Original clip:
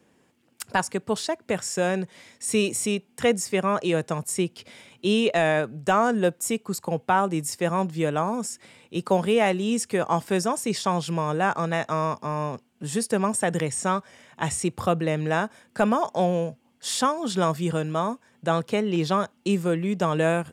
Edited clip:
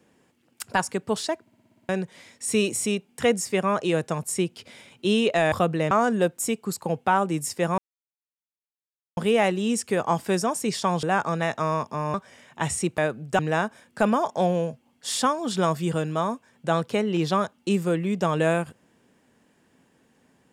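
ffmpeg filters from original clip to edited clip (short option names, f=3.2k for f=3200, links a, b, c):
-filter_complex "[0:a]asplit=17[a][b][c][d][e][f][g][h][i][j][k][l][m][n][o][p][q];[a]atrim=end=1.472[r];[b]atrim=start=1.408:end=1.472[s];[c]atrim=start=1.408:end=1.472[t];[d]atrim=start=1.408:end=1.472[u];[e]atrim=start=1.408:end=1.472[v];[f]atrim=start=1.408:end=1.472[w];[g]atrim=start=1.408:end=1.472[x];[h]atrim=start=1.408:end=1.472[y];[i]atrim=start=1.888:end=5.522[z];[j]atrim=start=14.788:end=15.182[aa];[k]atrim=start=5.928:end=7.8,asetpts=PTS-STARTPTS,afade=t=out:st=1.868:d=0.004:c=hsin[ab];[l]atrim=start=7.8:end=9.19,asetpts=PTS-STARTPTS,volume=0[ac];[m]atrim=start=9.19:end=11.052,asetpts=PTS-STARTPTS,afade=t=in:d=0.004:c=hsin[ad];[n]atrim=start=11.338:end=12.452[ae];[o]atrim=start=13.948:end=14.792[af];[p]atrim=start=5.518:end=5.932[ag];[q]atrim=start=15.178[ah];[r][s]acrossfade=d=0.004:c1=hsin:c2=hsin[ai];[ai][t]acrossfade=d=0.004:c1=hsin:c2=hsin[aj];[aj][u]acrossfade=d=0.004:c1=hsin:c2=hsin[ak];[ak][v]acrossfade=d=0.004:c1=hsin:c2=hsin[al];[al][w]acrossfade=d=0.004:c1=hsin:c2=hsin[am];[am][x]acrossfade=d=0.004:c1=hsin:c2=hsin[an];[an][y]acrossfade=d=0.004:c1=hsin:c2=hsin[ao];[ao][z]acrossfade=d=0.004:c1=hsin:c2=hsin[ap];[ap][aa]acrossfade=d=0.004:c1=hsin:c2=hsin[aq];[ab][ac][ad]concat=n=3:v=0:a=1[ar];[aq][ar]acrossfade=d=0.004:c1=hsin:c2=hsin[as];[as][ae]acrossfade=d=0.004:c1=hsin:c2=hsin[at];[at][af]acrossfade=d=0.004:c1=hsin:c2=hsin[au];[au][ag]acrossfade=d=0.004:c1=hsin:c2=hsin[av];[av][ah]acrossfade=d=0.004:c1=hsin:c2=hsin"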